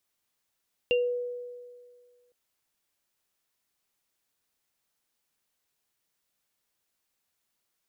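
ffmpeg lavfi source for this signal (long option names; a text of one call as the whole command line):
ffmpeg -f lavfi -i "aevalsrc='0.0944*pow(10,-3*t/1.89)*sin(2*PI*489*t)+0.0708*pow(10,-3*t/0.22)*sin(2*PI*2780*t)':duration=1.41:sample_rate=44100" out.wav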